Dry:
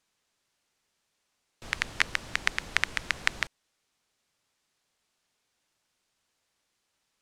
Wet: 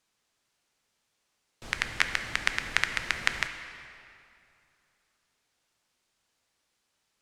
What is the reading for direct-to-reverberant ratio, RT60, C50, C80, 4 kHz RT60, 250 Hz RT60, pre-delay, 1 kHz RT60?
7.0 dB, 2.6 s, 8.5 dB, 9.5 dB, 2.0 s, 2.6 s, 7 ms, 2.6 s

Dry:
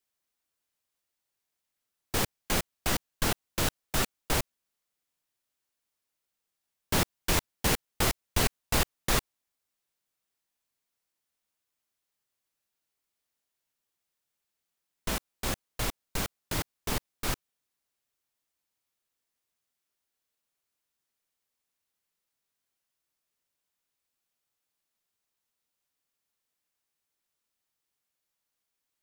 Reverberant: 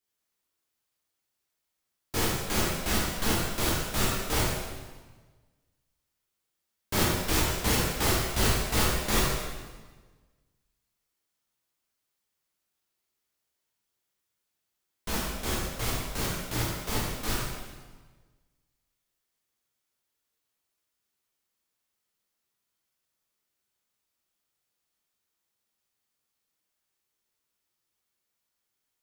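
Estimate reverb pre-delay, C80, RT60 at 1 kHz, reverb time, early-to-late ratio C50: 8 ms, 1.5 dB, 1.3 s, 1.3 s, -0.5 dB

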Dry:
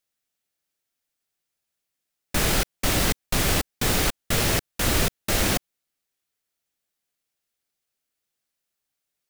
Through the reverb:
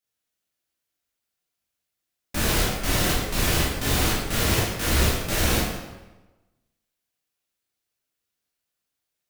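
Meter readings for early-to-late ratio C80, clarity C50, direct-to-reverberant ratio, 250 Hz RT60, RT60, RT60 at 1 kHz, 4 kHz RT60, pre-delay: 3.0 dB, 0.0 dB, -6.5 dB, 1.2 s, 1.1 s, 1.1 s, 0.85 s, 11 ms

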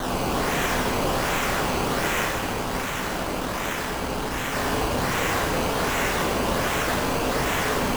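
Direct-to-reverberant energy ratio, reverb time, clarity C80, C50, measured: -3.5 dB, 2.0 s, 1.5 dB, -0.5 dB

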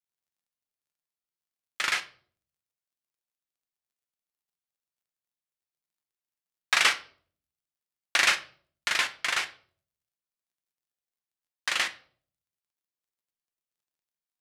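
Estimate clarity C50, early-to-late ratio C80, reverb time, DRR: 15.5 dB, 20.5 dB, 0.50 s, 7.5 dB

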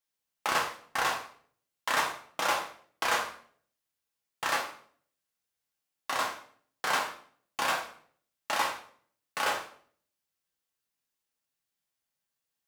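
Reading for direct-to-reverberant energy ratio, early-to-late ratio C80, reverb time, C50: -0.5 dB, 12.0 dB, 0.55 s, 8.0 dB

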